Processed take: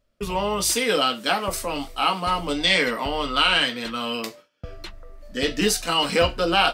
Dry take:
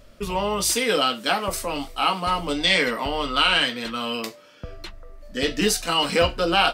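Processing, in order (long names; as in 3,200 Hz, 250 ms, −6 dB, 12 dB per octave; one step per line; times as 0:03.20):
noise gate with hold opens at −34 dBFS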